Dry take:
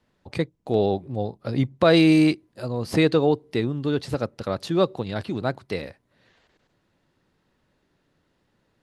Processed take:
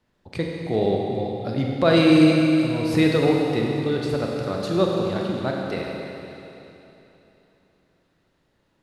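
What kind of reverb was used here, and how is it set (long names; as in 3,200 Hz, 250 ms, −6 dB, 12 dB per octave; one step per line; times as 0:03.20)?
four-comb reverb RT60 3.2 s, combs from 32 ms, DRR −1 dB
level −2 dB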